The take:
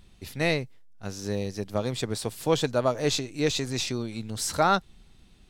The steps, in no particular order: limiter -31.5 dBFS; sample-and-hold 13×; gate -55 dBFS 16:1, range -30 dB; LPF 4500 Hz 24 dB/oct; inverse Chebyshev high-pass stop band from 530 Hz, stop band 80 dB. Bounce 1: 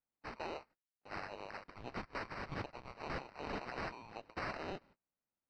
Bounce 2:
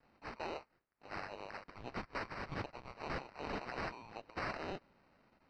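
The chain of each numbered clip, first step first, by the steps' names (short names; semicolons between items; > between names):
inverse Chebyshev high-pass > gate > sample-and-hold > LPF > limiter; gate > inverse Chebyshev high-pass > sample-and-hold > limiter > LPF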